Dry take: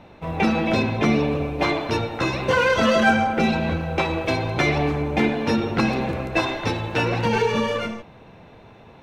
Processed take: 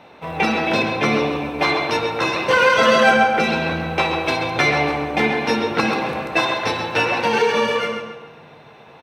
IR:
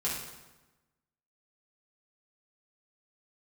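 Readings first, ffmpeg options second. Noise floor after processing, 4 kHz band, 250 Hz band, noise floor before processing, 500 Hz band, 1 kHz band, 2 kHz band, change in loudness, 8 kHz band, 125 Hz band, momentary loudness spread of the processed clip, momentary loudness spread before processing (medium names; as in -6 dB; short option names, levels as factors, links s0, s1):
-45 dBFS, +5.5 dB, -1.5 dB, -47 dBFS, +3.5 dB, +5.0 dB, +5.5 dB, +3.5 dB, +4.5 dB, -4.5 dB, 9 LU, 7 LU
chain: -filter_complex "[0:a]highpass=f=550:p=1,bandreject=f=6900:w=9.7,asplit=2[s0][s1];[s1]adelay=134,lowpass=f=4000:p=1,volume=0.473,asplit=2[s2][s3];[s3]adelay=134,lowpass=f=4000:p=1,volume=0.4,asplit=2[s4][s5];[s5]adelay=134,lowpass=f=4000:p=1,volume=0.4,asplit=2[s6][s7];[s7]adelay=134,lowpass=f=4000:p=1,volume=0.4,asplit=2[s8][s9];[s9]adelay=134,lowpass=f=4000:p=1,volume=0.4[s10];[s0][s2][s4][s6][s8][s10]amix=inputs=6:normalize=0,asplit=2[s11][s12];[1:a]atrim=start_sample=2205,lowshelf=f=150:g=7.5[s13];[s12][s13]afir=irnorm=-1:irlink=0,volume=0.211[s14];[s11][s14]amix=inputs=2:normalize=0,volume=1.5"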